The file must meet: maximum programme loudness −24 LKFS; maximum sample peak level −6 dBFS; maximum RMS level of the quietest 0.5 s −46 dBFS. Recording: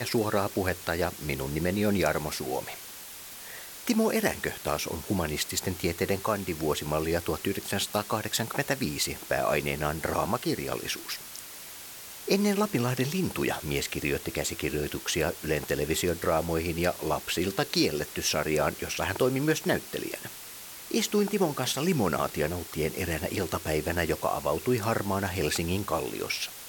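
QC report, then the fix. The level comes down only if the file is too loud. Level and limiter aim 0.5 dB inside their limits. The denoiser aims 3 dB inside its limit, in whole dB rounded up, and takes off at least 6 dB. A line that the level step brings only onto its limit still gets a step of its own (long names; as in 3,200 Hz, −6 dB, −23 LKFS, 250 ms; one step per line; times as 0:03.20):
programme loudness −29.0 LKFS: in spec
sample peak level −10.5 dBFS: in spec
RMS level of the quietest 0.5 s −44 dBFS: out of spec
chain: broadband denoise 6 dB, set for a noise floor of −44 dBFS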